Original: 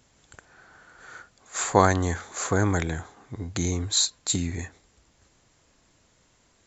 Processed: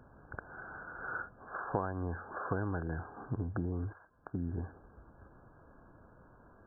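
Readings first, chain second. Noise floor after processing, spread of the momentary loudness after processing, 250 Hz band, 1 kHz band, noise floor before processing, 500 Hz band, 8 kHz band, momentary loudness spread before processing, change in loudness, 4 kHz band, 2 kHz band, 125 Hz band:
-61 dBFS, 21 LU, -10.5 dB, -12.5 dB, -64 dBFS, -13.0 dB, no reading, 16 LU, -14.0 dB, under -40 dB, -9.0 dB, -9.5 dB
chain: compression 6:1, threshold -39 dBFS, peak gain reduction 25 dB; brick-wall FIR low-pass 1.7 kHz; trim +6.5 dB

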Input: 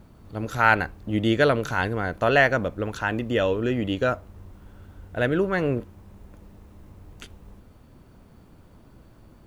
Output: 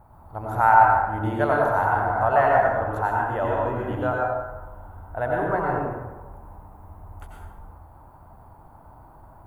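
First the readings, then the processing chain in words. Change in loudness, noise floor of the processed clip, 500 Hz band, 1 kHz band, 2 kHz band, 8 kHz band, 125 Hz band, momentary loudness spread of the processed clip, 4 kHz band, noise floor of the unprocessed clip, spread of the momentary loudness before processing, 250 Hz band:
+1.5 dB, -49 dBFS, +0.5 dB, +8.5 dB, -2.5 dB, no reading, -1.0 dB, 19 LU, under -15 dB, -52 dBFS, 12 LU, -5.0 dB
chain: FFT filter 130 Hz 0 dB, 200 Hz -9 dB, 480 Hz -3 dB, 830 Hz +15 dB, 2.8 kHz -14 dB, 6 kHz -16 dB, 11 kHz +1 dB; in parallel at -2 dB: compression, threshold -27 dBFS, peak gain reduction 20 dB; on the sum: plate-style reverb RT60 1.2 s, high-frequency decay 0.6×, pre-delay 80 ms, DRR -3 dB; trim -8.5 dB

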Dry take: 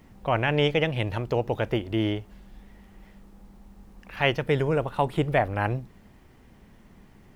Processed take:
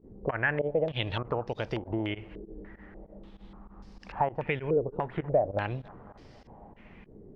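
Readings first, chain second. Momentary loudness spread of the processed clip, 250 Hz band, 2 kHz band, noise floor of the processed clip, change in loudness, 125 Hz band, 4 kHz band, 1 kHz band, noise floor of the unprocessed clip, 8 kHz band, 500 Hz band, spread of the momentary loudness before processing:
21 LU, -6.5 dB, -4.0 dB, -55 dBFS, -5.0 dB, -7.5 dB, -8.5 dB, -4.5 dB, -54 dBFS, no reading, -3.5 dB, 6 LU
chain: compression 6:1, threshold -29 dBFS, peak gain reduction 12 dB; tape echo 252 ms, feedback 86%, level -18.5 dB, low-pass 1.1 kHz; volume shaper 98 bpm, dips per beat 2, -22 dB, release 74 ms; step-sequenced low-pass 3.4 Hz 420–5000 Hz

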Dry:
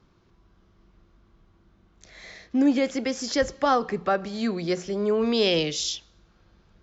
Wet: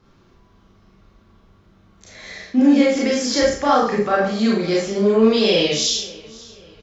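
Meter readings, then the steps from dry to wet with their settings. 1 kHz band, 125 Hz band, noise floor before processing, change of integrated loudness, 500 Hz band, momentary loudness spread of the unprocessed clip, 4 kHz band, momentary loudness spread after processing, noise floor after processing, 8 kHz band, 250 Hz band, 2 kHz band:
+6.0 dB, +7.0 dB, -62 dBFS, +7.5 dB, +7.5 dB, 8 LU, +7.5 dB, 9 LU, -55 dBFS, no reading, +8.0 dB, +7.0 dB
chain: peak limiter -16 dBFS, peak gain reduction 4.5 dB; on a send: feedback delay 540 ms, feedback 39%, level -22 dB; on the sum: Schroeder reverb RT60 0.44 s, combs from 28 ms, DRR -4.5 dB; trim +3 dB

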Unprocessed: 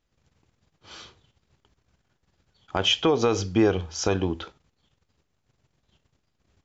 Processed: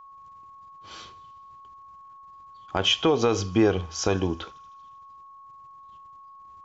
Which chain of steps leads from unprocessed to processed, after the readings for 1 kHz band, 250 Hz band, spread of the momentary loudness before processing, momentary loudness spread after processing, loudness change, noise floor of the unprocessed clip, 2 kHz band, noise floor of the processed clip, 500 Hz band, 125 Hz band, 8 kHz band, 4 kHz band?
+1.0 dB, 0.0 dB, 11 LU, 21 LU, 0.0 dB, -75 dBFS, 0.0 dB, -48 dBFS, 0.0 dB, 0.0 dB, no reading, 0.0 dB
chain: thinning echo 78 ms, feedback 74%, high-pass 680 Hz, level -24 dB; whistle 1.1 kHz -45 dBFS

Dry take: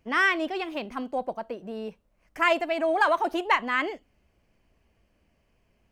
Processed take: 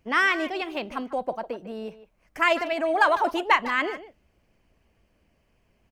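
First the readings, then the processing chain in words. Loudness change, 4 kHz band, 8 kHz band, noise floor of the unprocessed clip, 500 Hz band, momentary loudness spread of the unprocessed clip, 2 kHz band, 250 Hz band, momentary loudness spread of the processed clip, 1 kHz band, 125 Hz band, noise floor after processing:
+2.0 dB, +2.0 dB, +2.5 dB, -69 dBFS, +1.0 dB, 14 LU, +2.0 dB, +0.5 dB, 15 LU, +2.0 dB, no reading, -68 dBFS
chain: harmonic-percussive split percussive +3 dB; speakerphone echo 150 ms, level -13 dB

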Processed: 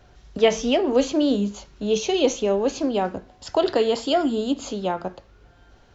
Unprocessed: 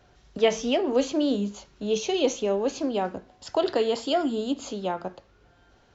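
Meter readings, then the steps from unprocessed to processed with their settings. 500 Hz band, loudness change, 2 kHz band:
+3.5 dB, +4.0 dB, +3.5 dB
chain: bass shelf 66 Hz +9.5 dB; trim +3.5 dB

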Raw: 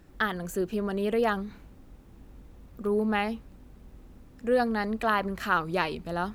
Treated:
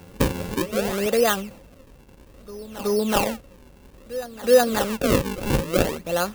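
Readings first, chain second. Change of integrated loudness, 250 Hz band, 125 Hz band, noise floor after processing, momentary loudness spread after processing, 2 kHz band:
+6.0 dB, +4.5 dB, +9.0 dB, -50 dBFS, 17 LU, +1.5 dB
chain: tilt EQ +1.5 dB/octave; band-stop 910 Hz; decimation with a swept rate 40×, swing 160% 0.6 Hz; treble shelf 8.4 kHz +6.5 dB; small resonant body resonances 540/2700 Hz, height 12 dB, ringing for 60 ms; reverse echo 373 ms -15.5 dB; trim +5.5 dB

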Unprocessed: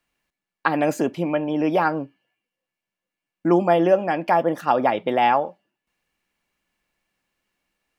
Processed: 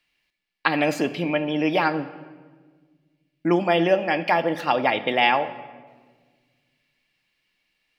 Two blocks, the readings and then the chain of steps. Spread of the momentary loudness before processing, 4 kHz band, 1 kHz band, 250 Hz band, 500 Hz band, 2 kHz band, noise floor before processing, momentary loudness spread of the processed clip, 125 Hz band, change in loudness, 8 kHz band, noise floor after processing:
8 LU, +8.5 dB, -2.5 dB, -1.5 dB, -2.5 dB, +4.0 dB, under -85 dBFS, 10 LU, -1.0 dB, -1.0 dB, no reading, -74 dBFS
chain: high-order bell 3.1 kHz +10.5 dB; simulated room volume 1600 m³, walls mixed, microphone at 0.48 m; trim -2.5 dB

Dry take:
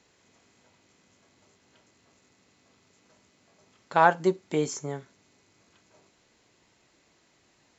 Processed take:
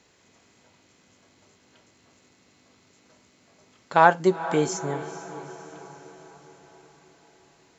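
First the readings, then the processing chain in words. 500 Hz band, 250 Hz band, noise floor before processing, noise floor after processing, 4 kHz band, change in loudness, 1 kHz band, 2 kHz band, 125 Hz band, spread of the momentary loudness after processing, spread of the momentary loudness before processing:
+3.5 dB, +3.5 dB, -66 dBFS, -61 dBFS, +3.5 dB, +3.0 dB, +3.5 dB, +3.5 dB, +4.0 dB, 22 LU, 16 LU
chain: echo that smears into a reverb 452 ms, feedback 56%, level -14 dB; trim +3.5 dB

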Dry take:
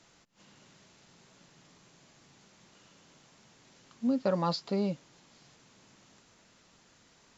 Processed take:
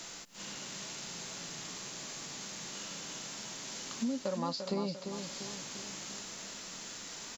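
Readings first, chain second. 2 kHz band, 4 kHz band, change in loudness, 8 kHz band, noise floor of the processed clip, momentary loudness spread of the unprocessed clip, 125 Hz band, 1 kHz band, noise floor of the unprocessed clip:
+8.0 dB, +6.5 dB, -8.0 dB, no reading, -47 dBFS, 6 LU, -5.0 dB, -3.0 dB, -63 dBFS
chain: peaking EQ 100 Hz -7.5 dB 1.5 oct; harmonic-percussive split percussive -6 dB; treble shelf 4.1 kHz +11 dB; compression 8:1, threshold -48 dBFS, peak gain reduction 22 dB; feedback delay 346 ms, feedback 48%, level -7 dB; trim +15 dB

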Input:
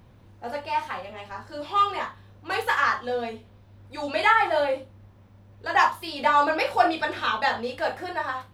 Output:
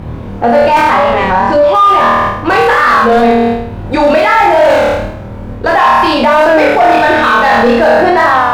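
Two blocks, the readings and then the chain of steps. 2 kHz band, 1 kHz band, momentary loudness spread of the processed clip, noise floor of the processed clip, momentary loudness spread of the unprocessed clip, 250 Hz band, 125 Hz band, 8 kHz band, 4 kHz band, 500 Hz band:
+15.0 dB, +16.5 dB, 9 LU, -23 dBFS, 16 LU, +23.0 dB, +22.5 dB, no reading, +13.0 dB, +20.5 dB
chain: companding laws mixed up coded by A; in parallel at -10 dB: integer overflow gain 22.5 dB; on the sum: flutter echo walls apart 4.4 m, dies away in 0.69 s; reverse; compression 6:1, threshold -25 dBFS, peak gain reduction 13.5 dB; reverse; low-pass 1 kHz 6 dB/octave; sine folder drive 5 dB, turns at -17.5 dBFS; loudness maximiser +26 dB; warped record 33 1/3 rpm, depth 100 cents; trim -1 dB

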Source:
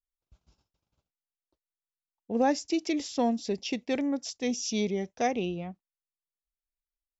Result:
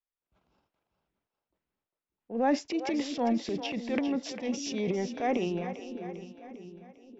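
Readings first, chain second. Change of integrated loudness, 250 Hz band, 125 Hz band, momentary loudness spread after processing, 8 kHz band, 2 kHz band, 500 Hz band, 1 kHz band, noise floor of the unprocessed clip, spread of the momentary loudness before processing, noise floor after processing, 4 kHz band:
-1.5 dB, -0.5 dB, +0.5 dB, 17 LU, no reading, -0.5 dB, -1.0 dB, -1.0 dB, under -85 dBFS, 7 LU, under -85 dBFS, -2.5 dB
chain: three-band isolator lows -13 dB, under 180 Hz, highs -20 dB, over 3 kHz; transient shaper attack -6 dB, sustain +11 dB; two-band feedback delay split 430 Hz, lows 591 ms, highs 400 ms, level -10 dB

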